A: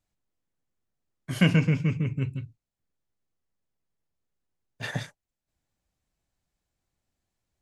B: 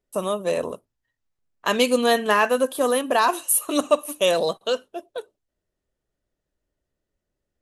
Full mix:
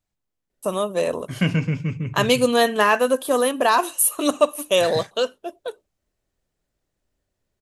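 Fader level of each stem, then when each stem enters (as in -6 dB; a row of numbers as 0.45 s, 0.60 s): 0.0 dB, +1.5 dB; 0.00 s, 0.50 s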